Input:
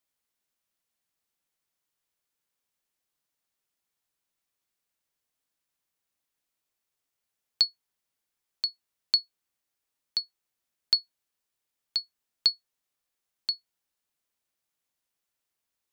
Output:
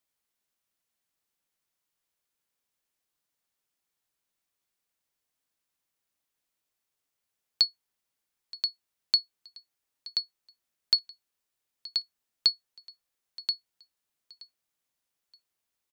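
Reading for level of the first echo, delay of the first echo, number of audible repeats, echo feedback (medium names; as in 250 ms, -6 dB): -20.5 dB, 924 ms, 2, 32%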